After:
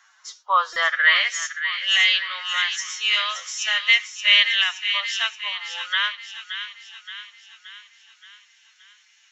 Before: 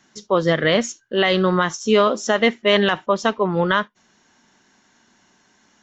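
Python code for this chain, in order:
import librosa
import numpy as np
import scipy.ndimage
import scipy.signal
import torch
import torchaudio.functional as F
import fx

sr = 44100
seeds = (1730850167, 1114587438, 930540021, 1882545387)

p1 = scipy.signal.sosfilt(scipy.signal.cheby2(4, 60, 170.0, 'highpass', fs=sr, output='sos'), x)
p2 = fx.stretch_vocoder(p1, sr, factor=1.6)
p3 = fx.filter_sweep_highpass(p2, sr, from_hz=1200.0, to_hz=2400.0, start_s=0.79, end_s=1.4, q=2.4)
p4 = p3 + fx.echo_wet_highpass(p3, sr, ms=574, feedback_pct=53, hz=1500.0, wet_db=-8, dry=0)
y = fx.buffer_glitch(p4, sr, at_s=(0.73,), block=128, repeats=10)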